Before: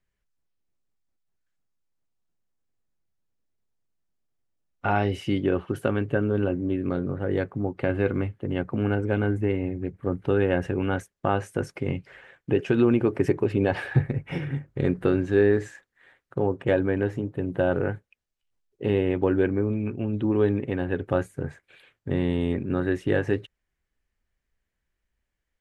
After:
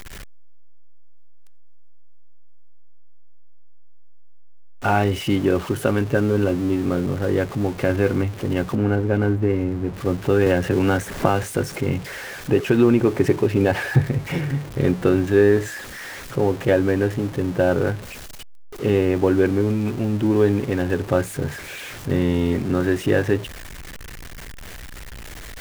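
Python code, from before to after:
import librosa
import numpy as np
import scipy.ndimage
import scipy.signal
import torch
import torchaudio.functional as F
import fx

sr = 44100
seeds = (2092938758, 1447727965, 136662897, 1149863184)

y = x + 0.5 * 10.0 ** (-33.5 / 20.0) * np.sign(x)
y = fx.high_shelf(y, sr, hz=2600.0, db=-11.0, at=(8.75, 9.94))
y = fx.band_squash(y, sr, depth_pct=100, at=(10.46, 11.43))
y = F.gain(torch.from_numpy(y), 4.0).numpy()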